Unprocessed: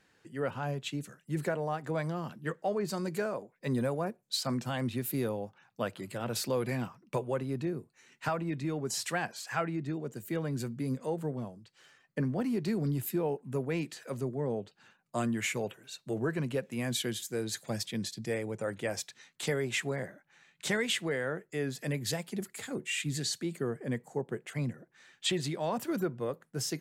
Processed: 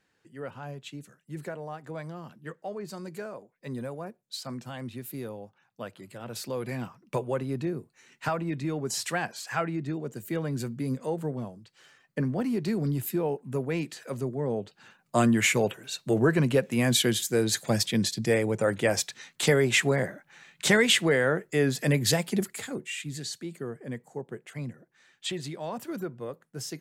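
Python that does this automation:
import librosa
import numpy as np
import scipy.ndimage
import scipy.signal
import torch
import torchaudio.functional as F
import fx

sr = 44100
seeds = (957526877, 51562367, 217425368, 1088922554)

y = fx.gain(x, sr, db=fx.line((6.19, -5.0), (7.18, 3.0), (14.42, 3.0), (15.2, 9.5), (22.37, 9.5), (22.97, -2.5)))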